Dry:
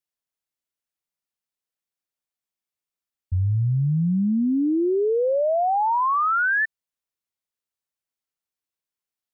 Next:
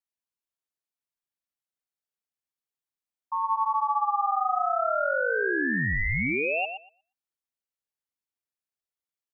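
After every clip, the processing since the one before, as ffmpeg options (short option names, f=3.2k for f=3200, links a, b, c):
-filter_complex "[0:a]asplit=2[a][b];[b]adelay=119,lowpass=f=1.1k:p=1,volume=-3dB,asplit=2[c][d];[d]adelay=119,lowpass=f=1.1k:p=1,volume=0.27,asplit=2[e][f];[f]adelay=119,lowpass=f=1.1k:p=1,volume=0.27,asplit=2[g][h];[h]adelay=119,lowpass=f=1.1k:p=1,volume=0.27[i];[a][c][e][g][i]amix=inputs=5:normalize=0,aeval=exprs='val(0)*sin(2*PI*1000*n/s)':c=same,volume=-3.5dB"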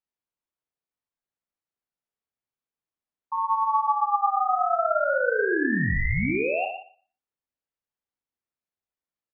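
-filter_complex "[0:a]lowpass=f=1.3k:p=1,asplit=2[a][b];[b]aecho=0:1:39|55:0.316|0.473[c];[a][c]amix=inputs=2:normalize=0,volume=3dB"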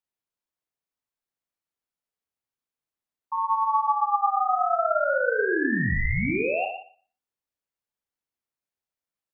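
-af "bandreject=f=49.7:t=h:w=4,bandreject=f=99.4:t=h:w=4,bandreject=f=149.1:t=h:w=4,bandreject=f=198.8:t=h:w=4,bandreject=f=248.5:t=h:w=4,bandreject=f=298.2:t=h:w=4,bandreject=f=347.9:t=h:w=4,bandreject=f=397.6:t=h:w=4,bandreject=f=447.3:t=h:w=4,bandreject=f=497:t=h:w=4"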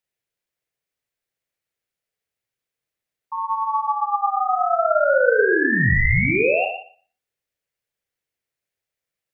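-af "equalizer=f=125:t=o:w=1:g=5,equalizer=f=250:t=o:w=1:g=-5,equalizer=f=500:t=o:w=1:g=6,equalizer=f=1k:t=o:w=1:g=-7,equalizer=f=2k:t=o:w=1:g=6,volume=4.5dB"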